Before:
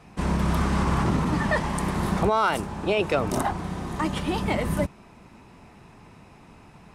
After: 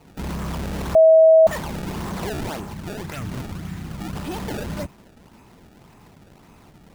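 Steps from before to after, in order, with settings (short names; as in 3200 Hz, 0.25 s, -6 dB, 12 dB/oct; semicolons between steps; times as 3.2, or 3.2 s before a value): soft clip -24 dBFS, distortion -10 dB; 2.73–4.2 graphic EQ 125/500/1000/2000 Hz +6/-12/-7/+5 dB; decimation with a swept rate 24×, swing 160% 1.8 Hz; 0.95–1.47 bleep 643 Hz -8 dBFS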